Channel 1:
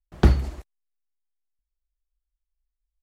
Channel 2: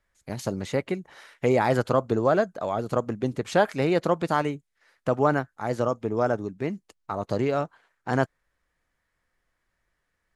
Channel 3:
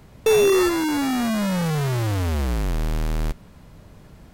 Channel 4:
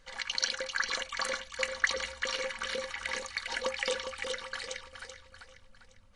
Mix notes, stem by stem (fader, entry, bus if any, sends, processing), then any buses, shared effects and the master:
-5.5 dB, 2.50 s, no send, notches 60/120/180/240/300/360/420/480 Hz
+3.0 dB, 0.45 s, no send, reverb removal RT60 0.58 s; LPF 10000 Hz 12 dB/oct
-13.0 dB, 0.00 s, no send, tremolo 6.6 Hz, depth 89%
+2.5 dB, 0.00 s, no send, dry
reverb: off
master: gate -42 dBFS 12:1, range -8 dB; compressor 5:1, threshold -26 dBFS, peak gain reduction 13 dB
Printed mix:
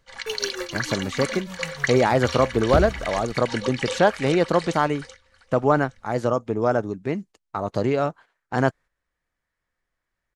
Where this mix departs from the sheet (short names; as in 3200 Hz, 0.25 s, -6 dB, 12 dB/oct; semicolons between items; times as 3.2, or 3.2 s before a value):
stem 2: missing reverb removal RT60 0.58 s; master: missing compressor 5:1, threshold -26 dBFS, peak gain reduction 13 dB